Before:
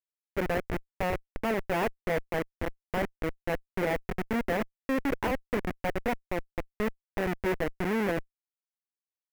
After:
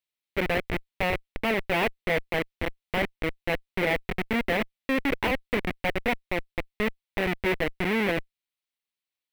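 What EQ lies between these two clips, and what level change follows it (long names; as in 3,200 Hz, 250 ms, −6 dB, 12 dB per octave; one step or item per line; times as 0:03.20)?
flat-topped bell 2,900 Hz +8 dB 1.3 octaves
notch filter 6,800 Hz, Q 14
+2.0 dB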